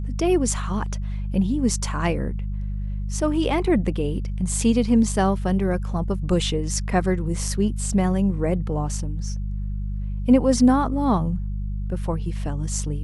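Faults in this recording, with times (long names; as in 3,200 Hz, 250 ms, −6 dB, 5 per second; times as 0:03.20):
mains hum 50 Hz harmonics 4 −27 dBFS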